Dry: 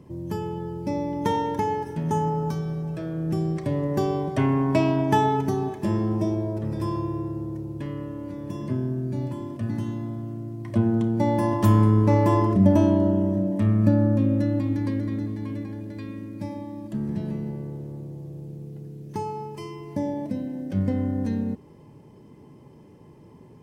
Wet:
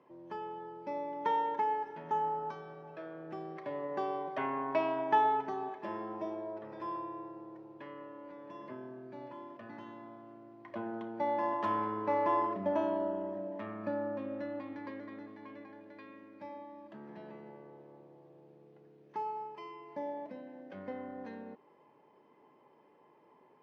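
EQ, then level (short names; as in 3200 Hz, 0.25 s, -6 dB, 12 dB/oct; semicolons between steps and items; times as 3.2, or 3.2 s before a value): HPF 770 Hz 12 dB/oct; air absorption 250 m; high shelf 2600 Hz -10 dB; 0.0 dB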